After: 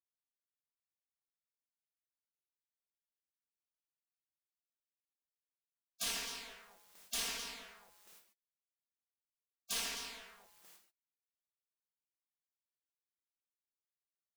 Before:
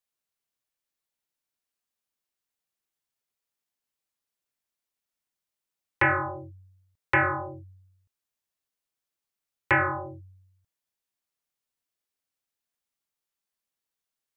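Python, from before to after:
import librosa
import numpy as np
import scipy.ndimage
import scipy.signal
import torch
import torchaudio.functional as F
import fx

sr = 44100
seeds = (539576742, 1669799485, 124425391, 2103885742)

y = fx.power_curve(x, sr, exponent=0.7)
y = fx.echo_multitap(y, sr, ms=(57, 122, 260), db=(-10.0, -14.0, -13.5))
y = fx.spec_gate(y, sr, threshold_db=-30, keep='weak')
y = F.gain(torch.from_numpy(y), 6.5).numpy()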